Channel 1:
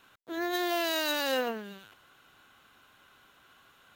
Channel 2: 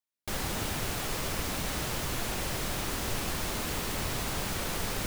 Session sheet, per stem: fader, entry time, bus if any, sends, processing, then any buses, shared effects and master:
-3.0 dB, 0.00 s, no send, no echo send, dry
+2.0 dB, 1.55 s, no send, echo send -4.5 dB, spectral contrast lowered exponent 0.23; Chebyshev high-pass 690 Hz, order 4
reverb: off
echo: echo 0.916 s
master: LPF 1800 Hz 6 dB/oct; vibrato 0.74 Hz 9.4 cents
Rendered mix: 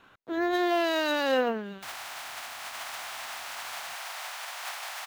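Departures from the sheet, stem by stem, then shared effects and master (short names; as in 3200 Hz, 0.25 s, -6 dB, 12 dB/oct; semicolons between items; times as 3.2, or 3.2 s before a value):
stem 1 -3.0 dB -> +5.5 dB; master: missing vibrato 0.74 Hz 9.4 cents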